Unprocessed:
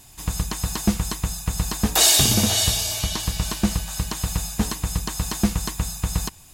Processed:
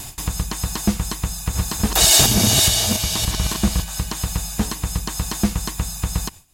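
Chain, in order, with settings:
0:01.25–0:03.84: delay that plays each chunk backwards 286 ms, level −1.5 dB
upward compression, threshold −22 dBFS
noise gate with hold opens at −21 dBFS
level +1 dB

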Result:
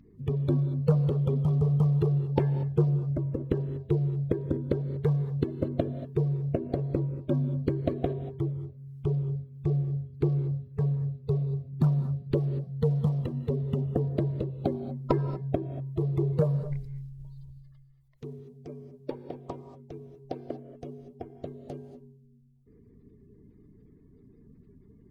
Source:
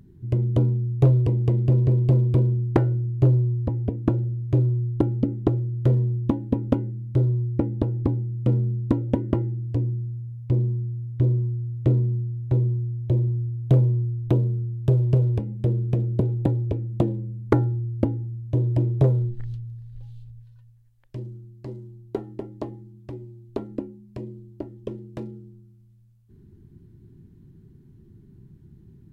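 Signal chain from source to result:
spectral magnitudes quantised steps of 30 dB
reverb whose tail is shaped and stops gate 300 ms rising, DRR 11 dB
speed change +16%
level −5.5 dB

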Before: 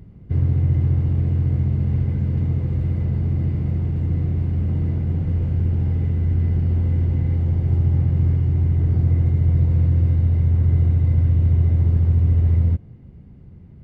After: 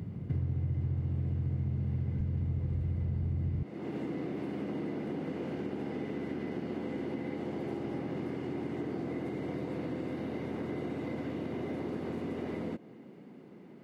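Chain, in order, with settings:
high-pass filter 88 Hz 24 dB per octave, from 0:02.20 41 Hz, from 0:03.63 260 Hz
downward compressor 4 to 1, threshold −39 dBFS, peak gain reduction 19 dB
level +5.5 dB

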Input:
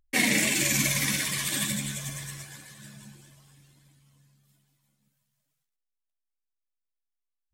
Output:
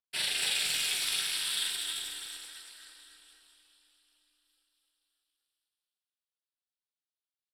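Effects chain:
meter weighting curve ITU-R 468
harmonic generator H 4 −32 dB, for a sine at −3.5 dBFS
phaser with its sweep stopped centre 1,400 Hz, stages 8
on a send: loudspeakers that aren't time-aligned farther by 14 metres −1 dB, 93 metres −2 dB
on the sum: reverb whose tail is shaped and stops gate 490 ms rising, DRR 9.5 dB
ring modulation 160 Hz
level −8.5 dB

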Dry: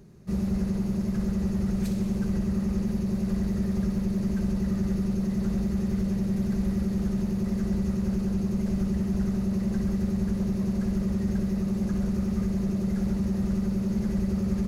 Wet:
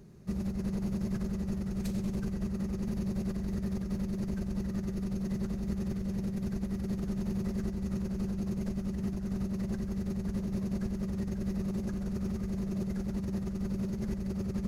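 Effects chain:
compressor whose output falls as the input rises −28 dBFS, ratio −0.5
level −4.5 dB

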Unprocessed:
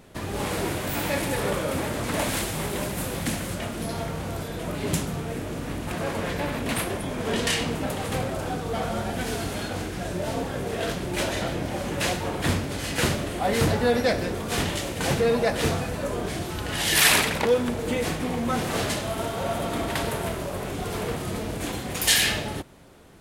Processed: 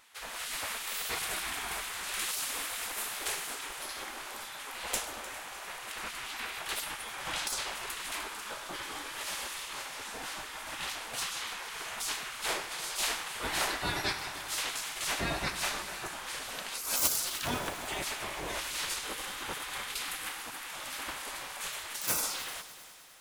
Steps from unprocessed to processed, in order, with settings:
stylus tracing distortion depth 0.027 ms
gate on every frequency bin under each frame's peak −15 dB weak
echo machine with several playback heads 101 ms, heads first and third, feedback 63%, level −17 dB
level −1.5 dB

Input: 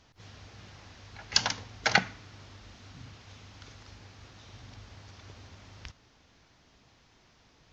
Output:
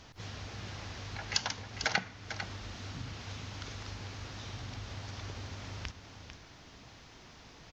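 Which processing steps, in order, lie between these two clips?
downward compressor 2 to 1, threshold −48 dBFS, peak gain reduction 17 dB
single-tap delay 448 ms −9.5 dB
level +8 dB

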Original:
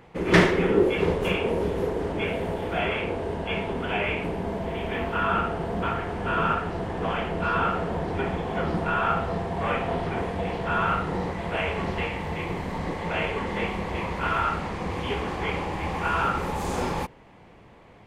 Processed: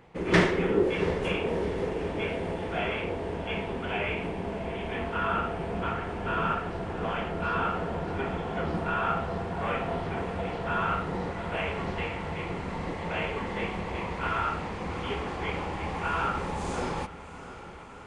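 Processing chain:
downsampling to 22,050 Hz
on a send: feedback delay with all-pass diffusion 694 ms, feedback 72%, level −15 dB
on the sum: level −4 dB

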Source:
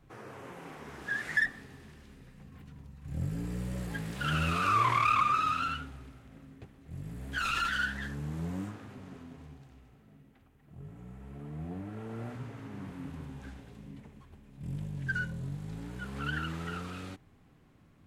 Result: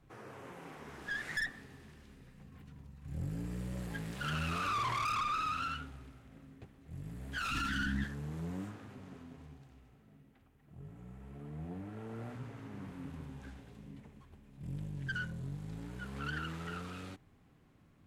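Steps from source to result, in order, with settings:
tube saturation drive 29 dB, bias 0.4
0:07.51–0:08.04: low shelf with overshoot 370 Hz +8.5 dB, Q 3
level −2 dB

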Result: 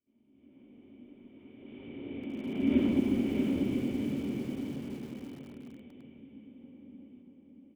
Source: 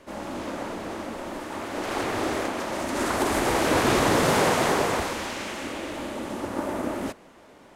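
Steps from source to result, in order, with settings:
source passing by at 0:02.76, 30 m/s, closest 3.3 metres
formant resonators in series i
hum removal 99.36 Hz, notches 14
in parallel at −0.5 dB: downward compressor, threshold −43 dBFS, peak gain reduction 12.5 dB
on the sum: high-frequency loss of the air 63 metres
repeating echo 637 ms, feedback 37%, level −4.5 dB
on a send at −4 dB: convolution reverb RT60 1.0 s, pre-delay 3 ms
on the sum: dynamic equaliser 190 Hz, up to +4 dB, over −57 dBFS, Q 4.5
automatic gain control gain up to 12 dB
feedback echo at a low word length 333 ms, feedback 55%, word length 6 bits, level −14 dB
level −5.5 dB

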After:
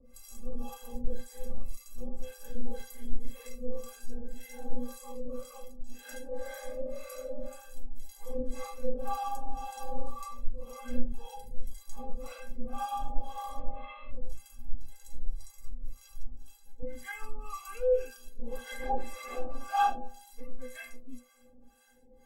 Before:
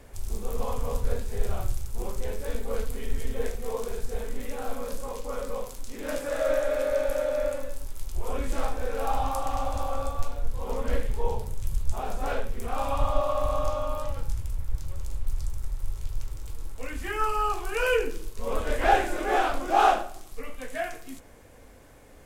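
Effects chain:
0:13.59–0:14.15: variable-slope delta modulation 16 kbit/s
stiff-string resonator 240 Hz, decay 0.35 s, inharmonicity 0.03
0:16.29–0:16.83: downward compressor, threshold −40 dBFS, peak gain reduction 7 dB
two-band tremolo in antiphase 1.9 Hz, depth 100%, crossover 700 Hz
phaser whose notches keep moving one way rising 0.57 Hz
level +11 dB

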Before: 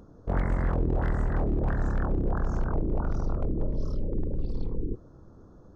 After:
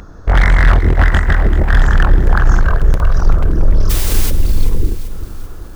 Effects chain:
octave-band graphic EQ 125/250/500/1,000/2,000 Hz −9/−9/−9/−4/+9 dB
0:00.70–0:01.76: compressor whose output falls as the input rises −29 dBFS, ratio −0.5
hard clipping −25.5 dBFS, distortion −13 dB
0:02.66–0:03.19: comb filter 1.8 ms, depth 95%
0:03.89–0:04.29: background noise white −41 dBFS
boost into a limiter +25 dB
feedback echo at a low word length 386 ms, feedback 55%, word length 6 bits, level −12.5 dB
level −3.5 dB

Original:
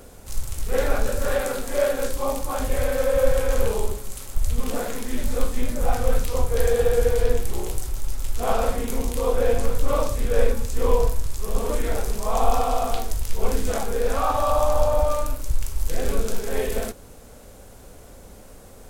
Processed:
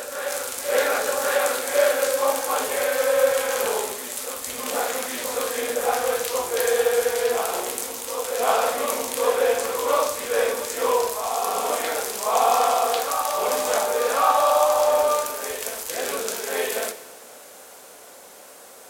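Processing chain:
Bessel high-pass filter 710 Hz, order 2
on a send: backwards echo 1,096 ms −7 dB
on the sum: dense smooth reverb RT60 1.3 s, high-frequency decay 0.9×, DRR 11 dB
level +6.5 dB

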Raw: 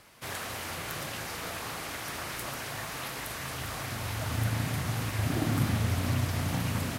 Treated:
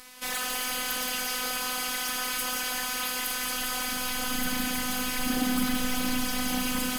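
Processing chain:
high-shelf EQ 2,000 Hz +8.5 dB
phases set to zero 252 Hz
soft clipping −18.5 dBFS, distortion −13 dB
on a send: delay with a high-pass on its return 174 ms, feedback 57%, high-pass 1,700 Hz, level −6 dB
on the sum: level +5.5 dB

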